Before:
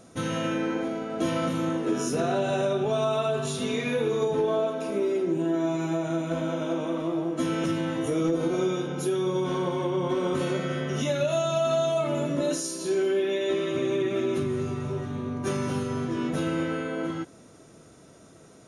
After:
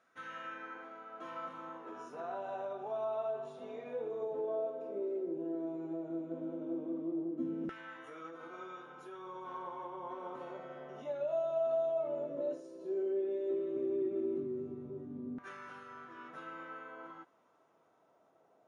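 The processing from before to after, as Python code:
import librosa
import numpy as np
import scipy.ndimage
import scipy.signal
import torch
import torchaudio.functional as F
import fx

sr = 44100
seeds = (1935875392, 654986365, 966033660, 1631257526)

p1 = fx.filter_lfo_bandpass(x, sr, shape='saw_down', hz=0.13, low_hz=270.0, high_hz=1600.0, q=2.5)
p2 = p1 + fx.echo_wet_highpass(p1, sr, ms=398, feedback_pct=78, hz=3500.0, wet_db=-21, dry=0)
y = F.gain(torch.from_numpy(p2), -7.0).numpy()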